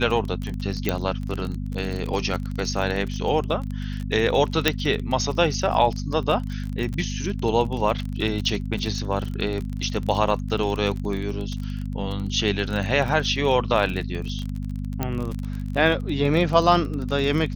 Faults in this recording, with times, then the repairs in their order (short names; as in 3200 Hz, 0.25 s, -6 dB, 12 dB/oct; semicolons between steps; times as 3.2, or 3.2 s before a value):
crackle 31/s -27 dBFS
hum 50 Hz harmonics 5 -29 dBFS
0.89 pop -7 dBFS
4.68 pop -2 dBFS
15.03 pop -10 dBFS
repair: de-click; de-hum 50 Hz, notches 5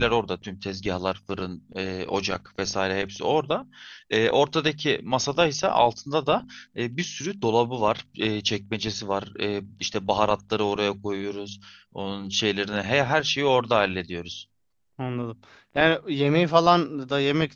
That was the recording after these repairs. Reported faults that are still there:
none